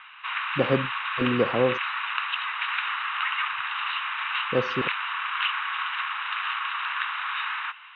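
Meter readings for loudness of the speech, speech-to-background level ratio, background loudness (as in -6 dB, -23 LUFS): -27.5 LUFS, 0.5 dB, -28.0 LUFS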